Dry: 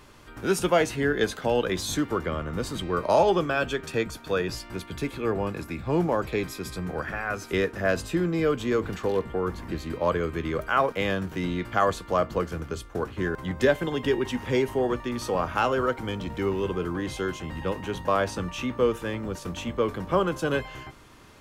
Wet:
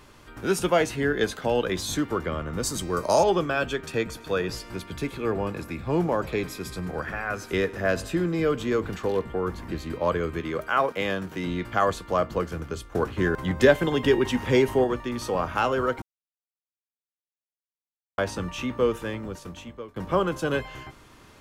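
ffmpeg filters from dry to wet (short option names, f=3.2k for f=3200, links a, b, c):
-filter_complex "[0:a]asettb=1/sr,asplit=3[a][b][c];[a]atrim=end=2.634[d];[b]atrim=start=2.63:end=3.24,asetpts=PTS-STARTPTS,afade=t=in:d=0.004:c=qsin,afade=t=out:st=0.606:d=0.004:c=qsin,highshelf=f=4.4k:t=q:w=1.5:g=10[e];[c]atrim=start=3.236[f];[d][e]acrossfade=d=0.004:c1=hsin:c2=qsin[g];[g][f]acrossfade=d=0.004:c1=qsin:c2=hsin,asettb=1/sr,asplit=3[h][i][j];[h]atrim=end=3.904[k];[i]atrim=start=3.9:end=8.7,asetpts=PTS-STARTPTS,afade=t=in:d=0.004:c=qsin,afade=t=out:st=4.796:d=0.004:c=qsin,aecho=1:1:104|208|312|416:0.0891|0.049|0.027|0.0148,atrim=end_sample=211680[l];[j]atrim=start=8.696[m];[k][l]acrossfade=d=0.004:c1=hsin:c2=qsin[n];[n][m]acrossfade=d=0.004:c1=qsin:c2=hsin,asettb=1/sr,asplit=3[o][p][q];[o]atrim=end=10.404[r];[p]atrim=start=10.4:end=11.47,asetpts=PTS-STARTPTS,afade=t=in:d=0.004:c=qsin,afade=t=out:st=1.066:d=0.004:c=qsin,highpass=f=160:p=1[s];[q]atrim=start=11.466[t];[r][s]acrossfade=d=0.004:c1=hsin:c2=qsin[u];[u][t]acrossfade=d=0.004:c1=qsin:c2=hsin,asplit=6[v][w][x][y][z][aa];[v]atrim=end=12.922[ab];[w]atrim=start=12.918:end=14.842,asetpts=PTS-STARTPTS,volume=4dB[ac];[x]atrim=start=14.838:end=16.02,asetpts=PTS-STARTPTS,afade=t=out:st=1.178:d=0.004:c=hsin[ad];[y]atrim=start=16.02:end=18.18,asetpts=PTS-STARTPTS,volume=0[ae];[z]atrim=start=18.18:end=19.96,asetpts=PTS-STARTPTS,afade=t=in:d=0.004:c=hsin,afade=t=out:st=0.83:d=0.95:silence=0.0749894[af];[aa]atrim=start=19.96,asetpts=PTS-STARTPTS,afade=t=in:d=0.004:c=hsin:silence=0.0749894[ag];[ab][ac]acrossfade=d=0.004:c1=hsin:c2=hsin[ah];[ad][ae][af][ag]concat=n=4:v=0:a=1[ai];[ah][ai]acrossfade=d=0.004:c1=hsin:c2=hsin"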